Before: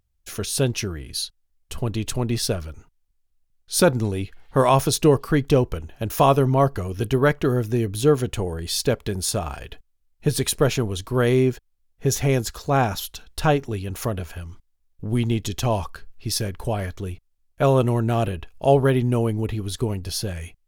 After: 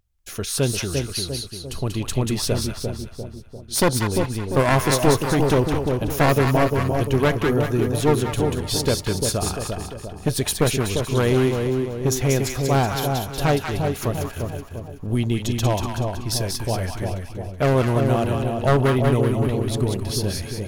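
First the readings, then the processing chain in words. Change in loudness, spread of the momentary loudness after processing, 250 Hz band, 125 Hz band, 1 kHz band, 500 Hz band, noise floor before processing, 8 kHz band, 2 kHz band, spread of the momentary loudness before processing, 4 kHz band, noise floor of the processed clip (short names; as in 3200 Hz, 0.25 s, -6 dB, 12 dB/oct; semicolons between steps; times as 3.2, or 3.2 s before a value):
+0.5 dB, 11 LU, +1.5 dB, +1.5 dB, +0.5 dB, +0.5 dB, -68 dBFS, +1.5 dB, +3.0 dB, 13 LU, +2.0 dB, -38 dBFS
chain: one-sided fold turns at -16 dBFS; split-band echo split 850 Hz, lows 0.347 s, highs 0.188 s, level -4 dB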